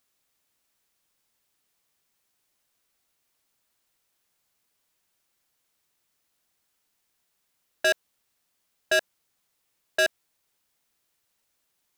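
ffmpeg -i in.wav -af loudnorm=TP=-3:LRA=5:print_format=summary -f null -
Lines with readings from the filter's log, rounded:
Input Integrated:    -26.6 LUFS
Input True Peak:     -18.2 dBTP
Input LRA:             3.4 LU
Input Threshold:     -36.6 LUFS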